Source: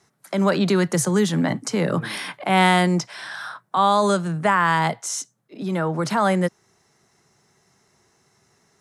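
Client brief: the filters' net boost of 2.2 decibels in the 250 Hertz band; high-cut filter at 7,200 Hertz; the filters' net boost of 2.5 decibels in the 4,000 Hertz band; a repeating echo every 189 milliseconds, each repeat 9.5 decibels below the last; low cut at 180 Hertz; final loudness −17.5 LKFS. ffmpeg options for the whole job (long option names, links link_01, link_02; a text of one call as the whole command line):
ffmpeg -i in.wav -af "highpass=180,lowpass=7200,equalizer=frequency=250:width_type=o:gain=6.5,equalizer=frequency=4000:width_type=o:gain=3.5,aecho=1:1:189|378|567|756:0.335|0.111|0.0365|0.012,volume=2dB" out.wav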